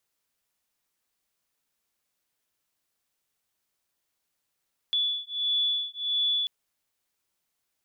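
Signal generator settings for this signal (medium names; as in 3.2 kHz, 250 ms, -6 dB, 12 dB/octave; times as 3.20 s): beating tones 3.44 kHz, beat 1.5 Hz, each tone -28 dBFS 1.54 s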